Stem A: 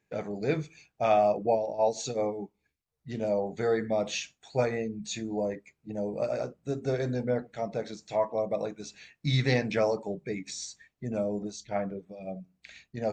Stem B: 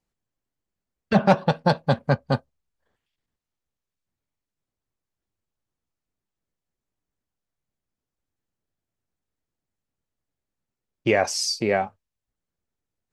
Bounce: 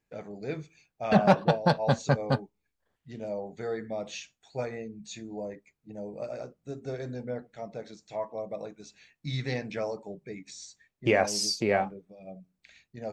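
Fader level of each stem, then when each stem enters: −6.5, −3.5 decibels; 0.00, 0.00 seconds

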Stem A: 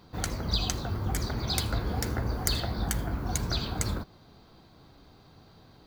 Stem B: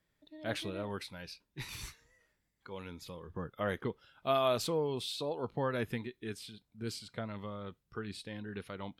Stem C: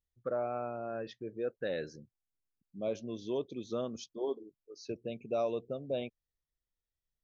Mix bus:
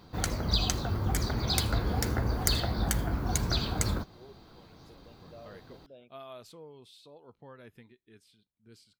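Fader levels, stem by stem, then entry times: +1.0, −16.5, −18.0 decibels; 0.00, 1.85, 0.00 seconds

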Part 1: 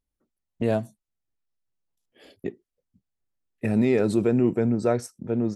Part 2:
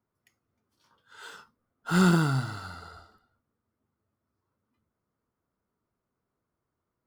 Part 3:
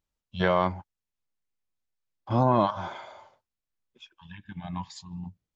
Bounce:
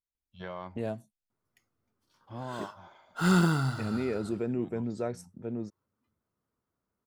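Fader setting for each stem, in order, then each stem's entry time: −10.5, −2.0, −17.0 decibels; 0.15, 1.30, 0.00 seconds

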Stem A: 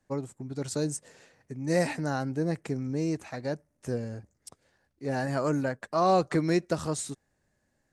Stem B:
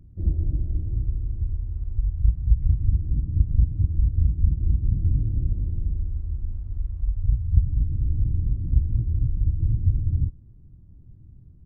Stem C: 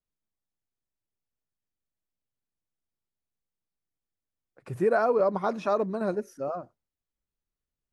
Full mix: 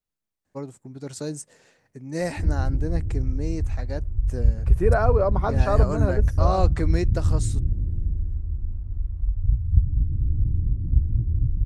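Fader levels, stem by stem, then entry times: −1.5, +0.5, +1.5 decibels; 0.45, 2.20, 0.00 seconds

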